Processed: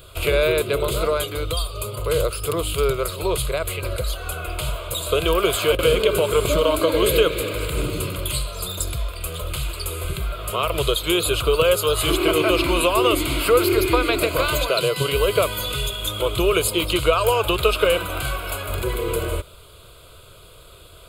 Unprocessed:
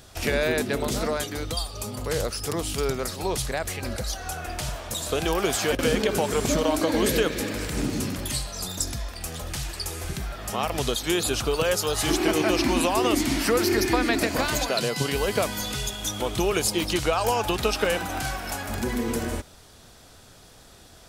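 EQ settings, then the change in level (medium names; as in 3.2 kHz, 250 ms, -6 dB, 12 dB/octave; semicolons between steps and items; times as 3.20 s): static phaser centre 1.2 kHz, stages 8; +7.5 dB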